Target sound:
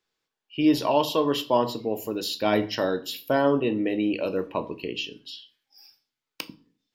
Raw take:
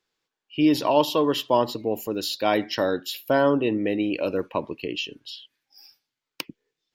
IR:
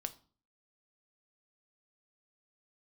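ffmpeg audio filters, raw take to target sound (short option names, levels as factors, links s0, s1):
-filter_complex "[0:a]asettb=1/sr,asplit=3[s0][s1][s2];[s0]atrim=end=2.334[s3];[s1]atrim=start=2.33:end=2.75,asetpts=PTS-STARTPTS,afade=t=in:d=0.004:c=qsin,afade=t=out:st=0.416:d=0.004:c=qsin,lowshelf=f=170:g=10[s4];[s2]atrim=start=2.746[s5];[s3][s4]acrossfade=d=0.004:c1=hsin:c2=qsin[s6];[s6][s5]acrossfade=d=0.004:c1=qsin:c2=hsin[s7];[1:a]atrim=start_sample=2205[s8];[s7][s8]afir=irnorm=-1:irlink=0"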